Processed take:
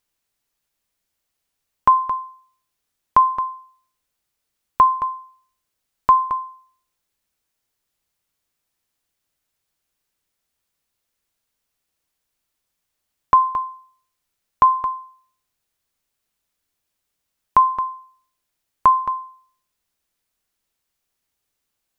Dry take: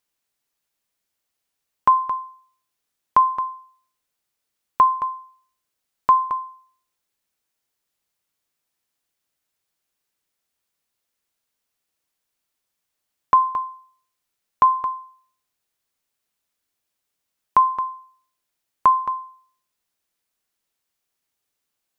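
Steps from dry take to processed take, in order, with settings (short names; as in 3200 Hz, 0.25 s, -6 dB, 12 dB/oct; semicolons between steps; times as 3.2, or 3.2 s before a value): low shelf 99 Hz +9.5 dB; gain +1.5 dB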